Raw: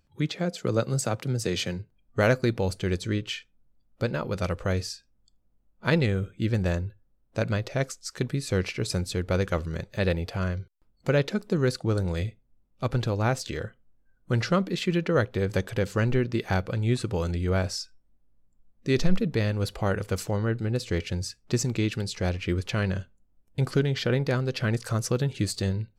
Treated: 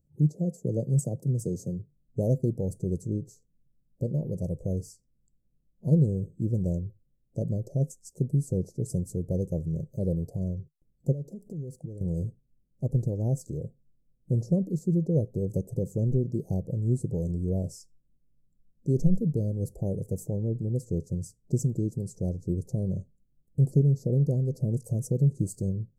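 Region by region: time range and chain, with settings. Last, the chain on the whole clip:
11.12–12.01 sample leveller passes 1 + compressor 5:1, threshold -36 dBFS
whole clip: inverse Chebyshev band-stop 1300–3300 Hz, stop band 60 dB; bell 150 Hz +12 dB 0.47 oct; gain -4.5 dB

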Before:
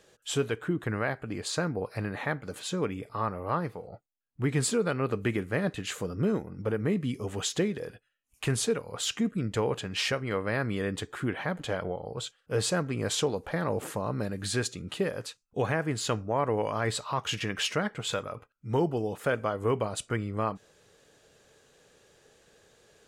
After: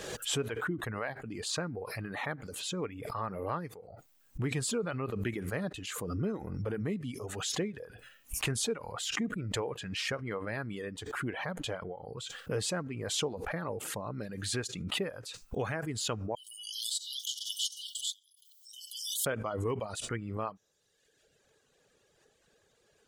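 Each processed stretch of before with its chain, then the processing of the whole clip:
16.35–19.26 brick-wall FIR high-pass 2900 Hz + tilt +2 dB/oct
whole clip: reverb removal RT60 1.2 s; backwards sustainer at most 38 dB/s; gain -6 dB

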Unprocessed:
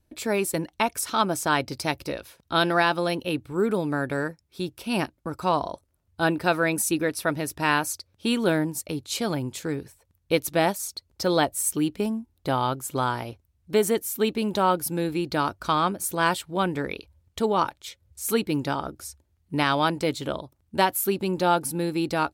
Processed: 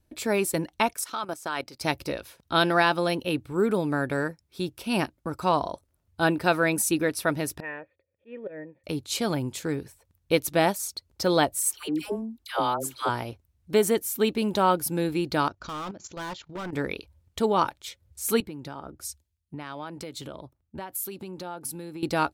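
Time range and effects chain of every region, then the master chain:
0.93–1.81 HPF 390 Hz 6 dB/oct + bell 1300 Hz +2.5 dB 0.35 oct + level quantiser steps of 15 dB
7.6–8.84 auto swell 0.121 s + vocal tract filter e
11.6–13.09 bell 130 Hz -11 dB 1.7 oct + dispersion lows, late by 0.135 s, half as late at 770 Hz
15.48–16.73 level quantiser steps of 14 dB + brick-wall FIR low-pass 7400 Hz + hard clip -31.5 dBFS
18.4–22.03 compressor 10:1, threshold -33 dBFS + three-band expander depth 100%
whole clip: dry

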